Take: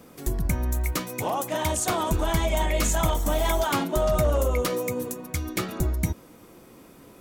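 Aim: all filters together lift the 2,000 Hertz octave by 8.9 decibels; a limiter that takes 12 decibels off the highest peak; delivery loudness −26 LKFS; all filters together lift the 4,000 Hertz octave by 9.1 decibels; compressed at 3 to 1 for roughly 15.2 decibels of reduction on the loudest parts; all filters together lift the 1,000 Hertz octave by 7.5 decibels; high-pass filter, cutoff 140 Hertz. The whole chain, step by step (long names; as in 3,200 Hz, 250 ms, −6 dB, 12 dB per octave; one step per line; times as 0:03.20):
high-pass filter 140 Hz
parametric band 1,000 Hz +7 dB
parametric band 2,000 Hz +6.5 dB
parametric band 4,000 Hz +9 dB
downward compressor 3 to 1, threshold −38 dBFS
level +14.5 dB
brickwall limiter −16.5 dBFS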